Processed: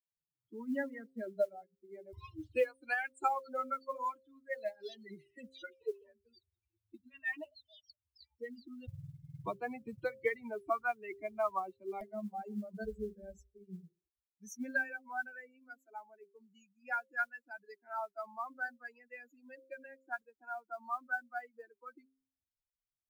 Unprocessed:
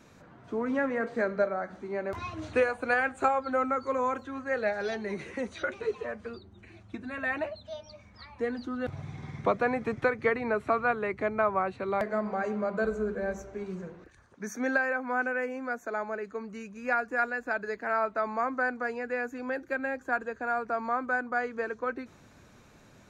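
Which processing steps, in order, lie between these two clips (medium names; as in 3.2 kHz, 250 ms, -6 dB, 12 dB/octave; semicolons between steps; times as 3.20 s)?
expander on every frequency bin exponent 3; de-hum 132.6 Hz, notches 4; modulation noise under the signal 35 dB; trim -2 dB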